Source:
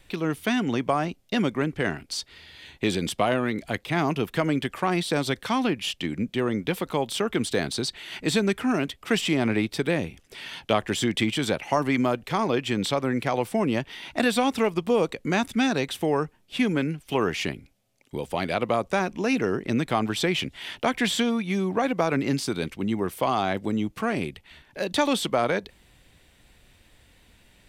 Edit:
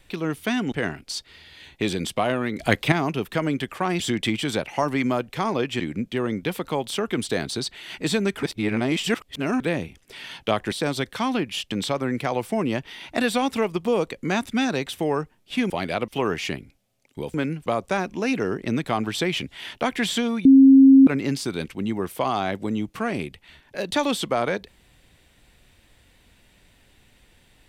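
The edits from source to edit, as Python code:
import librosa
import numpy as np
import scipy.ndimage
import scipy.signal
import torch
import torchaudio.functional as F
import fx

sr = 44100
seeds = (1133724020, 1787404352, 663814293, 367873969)

y = fx.edit(x, sr, fx.cut(start_s=0.72, length_s=1.02),
    fx.clip_gain(start_s=3.61, length_s=0.33, db=9.0),
    fx.swap(start_s=5.02, length_s=1.0, other_s=10.94, other_length_s=1.8),
    fx.reverse_span(start_s=8.65, length_s=1.17),
    fx.swap(start_s=16.72, length_s=0.32, other_s=18.3, other_length_s=0.38),
    fx.bleep(start_s=21.47, length_s=0.62, hz=269.0, db=-7.5), tone=tone)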